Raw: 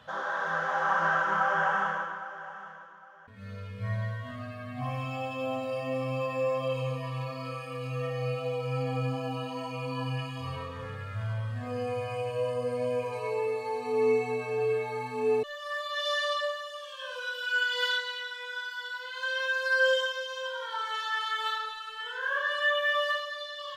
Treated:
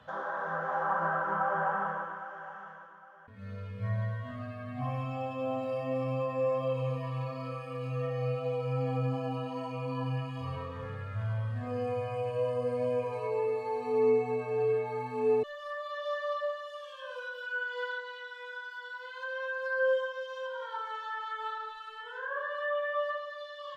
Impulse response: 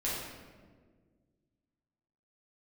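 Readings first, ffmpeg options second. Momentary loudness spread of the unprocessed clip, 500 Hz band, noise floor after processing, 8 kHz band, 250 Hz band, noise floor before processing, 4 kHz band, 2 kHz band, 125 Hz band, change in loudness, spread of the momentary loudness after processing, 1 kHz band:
12 LU, -0.5 dB, -46 dBFS, under -10 dB, 0.0 dB, -43 dBFS, -14.5 dB, -7.5 dB, 0.0 dB, -3.0 dB, 12 LU, -2.5 dB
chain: -filter_complex "[0:a]highshelf=f=2.4k:g=-9.5,acrossover=split=380|1500[a][b][c];[c]acompressor=threshold=-49dB:ratio=6[d];[a][b][d]amix=inputs=3:normalize=0"

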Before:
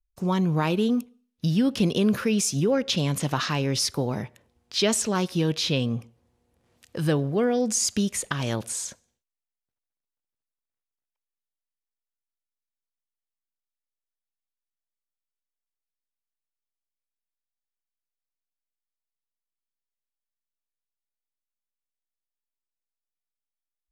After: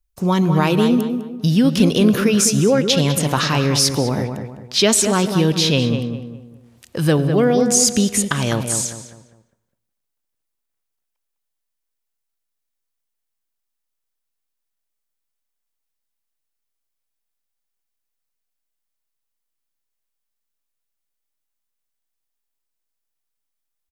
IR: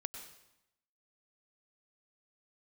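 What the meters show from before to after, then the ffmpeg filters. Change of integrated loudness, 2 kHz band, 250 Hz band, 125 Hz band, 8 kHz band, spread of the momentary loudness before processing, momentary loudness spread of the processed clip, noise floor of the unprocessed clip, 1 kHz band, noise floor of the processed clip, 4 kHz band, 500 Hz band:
+8.0 dB, +8.0 dB, +8.0 dB, +8.0 dB, +9.5 dB, 8 LU, 10 LU, under -85 dBFS, +8.0 dB, -78 dBFS, +8.5 dB, +8.0 dB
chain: -filter_complex "[0:a]highshelf=f=7.6k:g=5,asplit=2[a][b];[b]adelay=203,lowpass=f=1.9k:p=1,volume=-6.5dB,asplit=2[c][d];[d]adelay=203,lowpass=f=1.9k:p=1,volume=0.37,asplit=2[e][f];[f]adelay=203,lowpass=f=1.9k:p=1,volume=0.37,asplit=2[g][h];[h]adelay=203,lowpass=f=1.9k:p=1,volume=0.37[i];[a][c][e][g][i]amix=inputs=5:normalize=0,asplit=2[j][k];[1:a]atrim=start_sample=2205[l];[k][l]afir=irnorm=-1:irlink=0,volume=-8.5dB[m];[j][m]amix=inputs=2:normalize=0,volume=5dB"

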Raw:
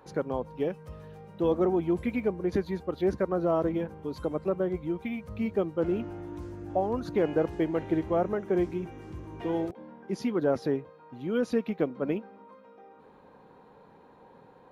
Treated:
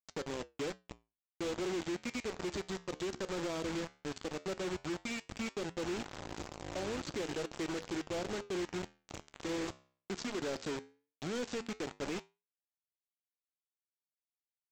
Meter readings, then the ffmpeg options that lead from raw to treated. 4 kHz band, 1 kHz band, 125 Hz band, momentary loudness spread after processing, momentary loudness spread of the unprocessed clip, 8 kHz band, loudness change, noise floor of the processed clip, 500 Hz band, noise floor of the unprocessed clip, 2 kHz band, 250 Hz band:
+7.0 dB, -9.0 dB, -10.5 dB, 7 LU, 12 LU, n/a, -9.5 dB, under -85 dBFS, -11.0 dB, -56 dBFS, -0.5 dB, -10.5 dB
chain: -filter_complex "[0:a]equalizer=f=860:w=1.4:g=-13,acrossover=split=2900[a][b];[b]acontrast=66[c];[a][c]amix=inputs=2:normalize=0,alimiter=limit=-23dB:level=0:latency=1:release=61,acrossover=split=350|3000[d][e][f];[d]acompressor=threshold=-38dB:ratio=10[g];[g][e][f]amix=inputs=3:normalize=0,aresample=16000,acrusher=bits=5:mix=0:aa=0.000001,aresample=44100,flanger=delay=5.8:depth=9.7:regen=-80:speed=0.15:shape=triangular,asoftclip=type=hard:threshold=-33.5dB,volume=1dB"

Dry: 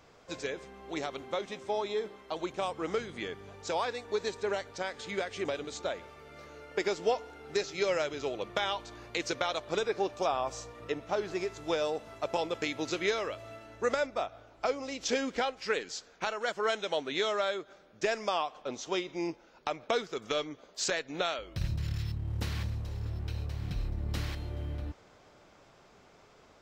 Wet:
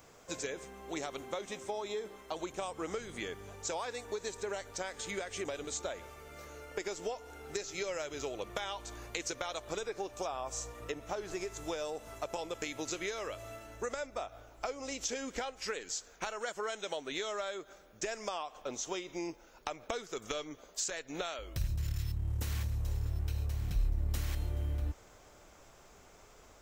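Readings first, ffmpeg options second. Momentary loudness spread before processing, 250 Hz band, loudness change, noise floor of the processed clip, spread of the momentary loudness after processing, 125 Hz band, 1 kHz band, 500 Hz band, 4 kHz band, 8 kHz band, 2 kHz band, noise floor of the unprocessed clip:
9 LU, -5.5 dB, -4.5 dB, -59 dBFS, 8 LU, -0.5 dB, -6.5 dB, -6.5 dB, -5.5 dB, +3.0 dB, -6.0 dB, -60 dBFS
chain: -af "aexciter=amount=3.8:drive=4.3:freq=6.2k,acompressor=threshold=-34dB:ratio=6,asubboost=boost=3.5:cutoff=70"

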